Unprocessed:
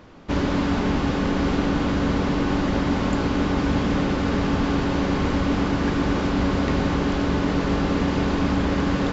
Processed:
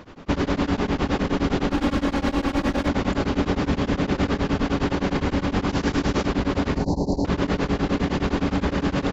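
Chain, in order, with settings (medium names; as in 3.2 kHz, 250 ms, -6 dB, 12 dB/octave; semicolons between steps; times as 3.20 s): 1.71–2.89 s: comb filter that takes the minimum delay 3.6 ms; 6.76–7.25 s: Chebyshev band-stop 960–4200 Hz, order 5; speakerphone echo 80 ms, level -7 dB; peak limiter -18 dBFS, peak gain reduction 8.5 dB; 5.69–6.26 s: peaking EQ 6.2 kHz +6.5 dB 1.2 oct; tremolo of two beating tones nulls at 9.7 Hz; trim +6 dB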